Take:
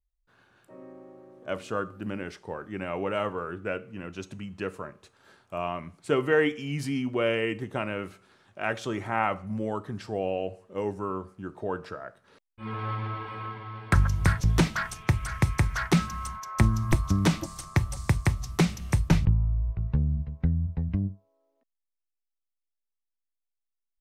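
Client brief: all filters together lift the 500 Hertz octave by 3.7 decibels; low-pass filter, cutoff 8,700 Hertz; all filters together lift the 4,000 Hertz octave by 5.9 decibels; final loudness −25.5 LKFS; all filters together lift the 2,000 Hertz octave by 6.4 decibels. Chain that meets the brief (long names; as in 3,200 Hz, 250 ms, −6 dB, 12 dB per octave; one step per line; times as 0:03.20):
low-pass filter 8,700 Hz
parametric band 500 Hz +4 dB
parametric band 2,000 Hz +6.5 dB
parametric band 4,000 Hz +5.5 dB
level +1 dB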